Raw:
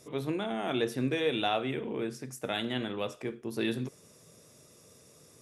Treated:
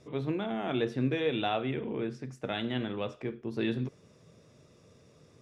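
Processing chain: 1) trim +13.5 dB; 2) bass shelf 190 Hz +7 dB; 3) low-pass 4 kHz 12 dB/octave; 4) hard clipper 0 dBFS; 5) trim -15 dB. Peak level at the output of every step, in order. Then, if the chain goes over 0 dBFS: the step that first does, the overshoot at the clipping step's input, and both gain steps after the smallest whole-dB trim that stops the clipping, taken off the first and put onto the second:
-2.5 dBFS, -2.5 dBFS, -2.5 dBFS, -2.5 dBFS, -17.5 dBFS; nothing clips

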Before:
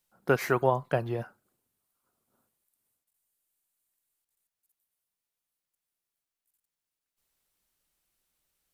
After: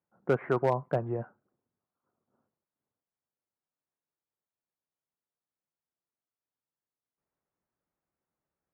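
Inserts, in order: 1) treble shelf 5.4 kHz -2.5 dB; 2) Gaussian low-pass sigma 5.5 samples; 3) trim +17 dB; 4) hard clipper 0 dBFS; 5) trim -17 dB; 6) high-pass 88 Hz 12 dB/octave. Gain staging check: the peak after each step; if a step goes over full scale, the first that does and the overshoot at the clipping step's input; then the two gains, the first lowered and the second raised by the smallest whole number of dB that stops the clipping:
-10.5 dBFS, -11.5 dBFS, +5.5 dBFS, 0.0 dBFS, -17.0 dBFS, -14.0 dBFS; step 3, 5.5 dB; step 3 +11 dB, step 5 -11 dB

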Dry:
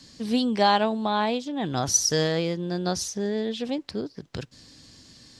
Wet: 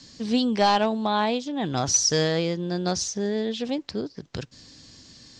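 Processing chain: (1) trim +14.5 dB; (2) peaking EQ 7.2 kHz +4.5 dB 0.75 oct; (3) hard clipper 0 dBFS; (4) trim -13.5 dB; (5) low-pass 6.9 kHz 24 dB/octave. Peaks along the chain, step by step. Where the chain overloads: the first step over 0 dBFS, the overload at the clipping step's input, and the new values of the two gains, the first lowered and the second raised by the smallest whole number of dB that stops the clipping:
+6.5 dBFS, +9.5 dBFS, 0.0 dBFS, -13.5 dBFS, -12.5 dBFS; step 1, 9.5 dB; step 1 +4.5 dB, step 4 -3.5 dB

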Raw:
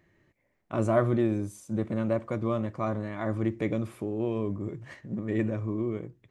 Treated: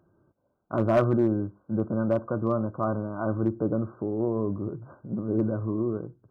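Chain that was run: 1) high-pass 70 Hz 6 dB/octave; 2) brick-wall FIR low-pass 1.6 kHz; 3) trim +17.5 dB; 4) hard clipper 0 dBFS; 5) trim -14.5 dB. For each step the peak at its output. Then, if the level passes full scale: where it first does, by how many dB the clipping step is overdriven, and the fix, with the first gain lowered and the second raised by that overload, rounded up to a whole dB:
-11.0 dBFS, -11.5 dBFS, +6.0 dBFS, 0.0 dBFS, -14.5 dBFS; step 3, 6.0 dB; step 3 +11.5 dB, step 5 -8.5 dB

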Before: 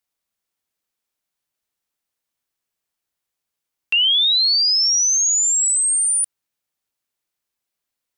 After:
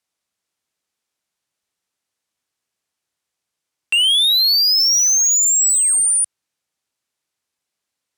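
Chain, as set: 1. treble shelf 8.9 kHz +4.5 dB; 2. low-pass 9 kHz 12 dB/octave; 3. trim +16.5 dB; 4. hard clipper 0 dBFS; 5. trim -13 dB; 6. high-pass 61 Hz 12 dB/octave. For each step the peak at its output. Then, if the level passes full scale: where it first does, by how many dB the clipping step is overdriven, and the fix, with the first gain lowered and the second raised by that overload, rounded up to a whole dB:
-12.5 dBFS, -12.5 dBFS, +4.0 dBFS, 0.0 dBFS, -13.0 dBFS, -12.5 dBFS; step 3, 4.0 dB; step 3 +12.5 dB, step 5 -9 dB

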